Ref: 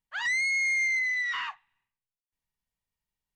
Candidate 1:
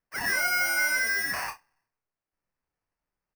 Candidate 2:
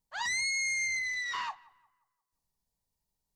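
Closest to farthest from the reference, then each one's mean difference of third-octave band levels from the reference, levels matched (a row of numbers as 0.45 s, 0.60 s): 2, 1; 4.5 dB, 16.0 dB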